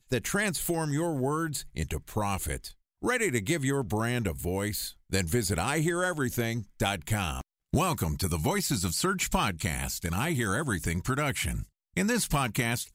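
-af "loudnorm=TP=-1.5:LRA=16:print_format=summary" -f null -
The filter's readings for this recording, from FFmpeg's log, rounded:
Input Integrated:    -29.5 LUFS
Input True Peak:     -10.5 dBTP
Input LRA:             1.5 LU
Input Threshold:     -39.5 LUFS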